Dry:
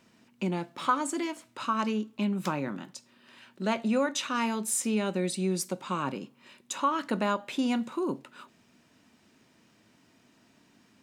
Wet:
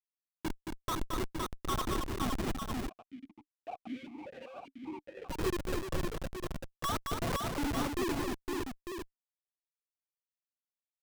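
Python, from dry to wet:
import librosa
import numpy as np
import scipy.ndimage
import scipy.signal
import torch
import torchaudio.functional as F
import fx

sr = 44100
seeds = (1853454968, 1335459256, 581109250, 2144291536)

y = fx.sine_speech(x, sr)
y = fx.hum_notches(y, sr, base_hz=60, count=8)
y = fx.echo_feedback(y, sr, ms=203, feedback_pct=55, wet_db=-19.5)
y = fx.env_lowpass(y, sr, base_hz=370.0, full_db=-26.0)
y = fx.schmitt(y, sr, flips_db=-27.0)
y = fx.echo_multitap(y, sr, ms=(222, 513, 900), db=(-4.5, -3.5, -7.0))
y = fx.vowel_held(y, sr, hz=5.1, at=(2.89, 5.29))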